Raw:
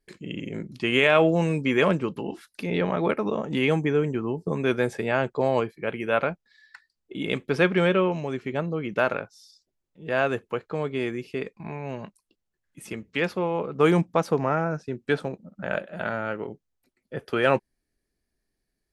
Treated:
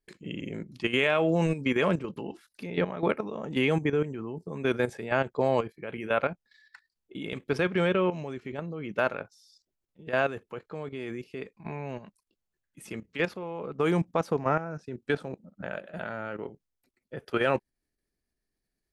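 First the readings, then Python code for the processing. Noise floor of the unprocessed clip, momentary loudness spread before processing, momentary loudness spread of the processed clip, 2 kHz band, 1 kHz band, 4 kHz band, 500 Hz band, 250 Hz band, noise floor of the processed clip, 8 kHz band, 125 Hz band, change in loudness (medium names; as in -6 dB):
-81 dBFS, 15 LU, 15 LU, -4.5 dB, -4.0 dB, -4.5 dB, -4.5 dB, -4.5 dB, -84 dBFS, no reading, -4.0 dB, -4.0 dB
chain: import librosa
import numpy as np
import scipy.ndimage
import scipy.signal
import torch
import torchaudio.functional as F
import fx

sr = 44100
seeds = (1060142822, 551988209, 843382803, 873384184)

y = fx.level_steps(x, sr, step_db=12)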